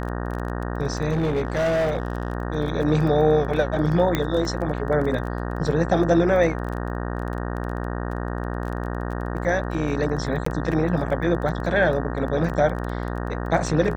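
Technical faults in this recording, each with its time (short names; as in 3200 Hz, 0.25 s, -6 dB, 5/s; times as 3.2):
buzz 60 Hz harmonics 31 -28 dBFS
crackle 18/s -30 dBFS
1.11–2.33 clipped -18.5 dBFS
4.15 pop -8 dBFS
10.45–10.46 gap 14 ms
12.49–12.5 gap 7.4 ms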